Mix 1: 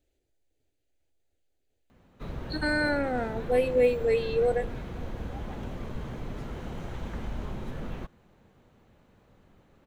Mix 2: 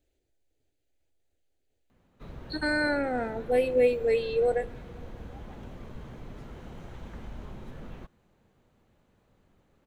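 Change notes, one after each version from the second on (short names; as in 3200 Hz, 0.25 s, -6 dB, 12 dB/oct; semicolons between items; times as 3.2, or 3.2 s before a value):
background -6.5 dB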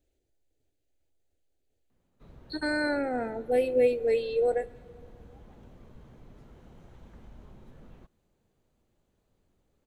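background -8.5 dB; master: add bell 2100 Hz -3.5 dB 2.2 oct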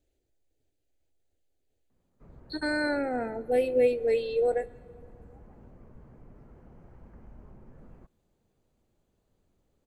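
background: add running mean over 12 samples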